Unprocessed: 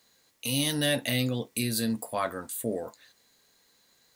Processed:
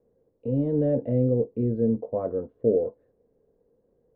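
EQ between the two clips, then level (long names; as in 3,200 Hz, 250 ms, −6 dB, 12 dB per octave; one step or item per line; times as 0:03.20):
low-pass with resonance 470 Hz, resonance Q 4.9
high-frequency loss of the air 400 metres
low-shelf EQ 120 Hz +11.5 dB
0.0 dB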